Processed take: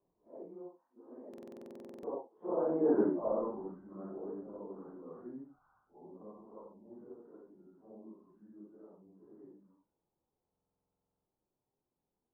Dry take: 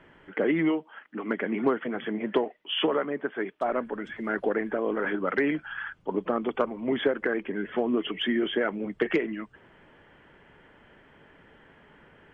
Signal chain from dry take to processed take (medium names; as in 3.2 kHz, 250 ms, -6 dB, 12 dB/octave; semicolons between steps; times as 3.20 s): phase randomisation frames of 200 ms; Doppler pass-by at 2.95 s, 39 m/s, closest 3.7 m; elliptic low-pass 1 kHz, stop band 80 dB; buffer glitch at 1.29/10.51 s, samples 2048, times 15; trim +7 dB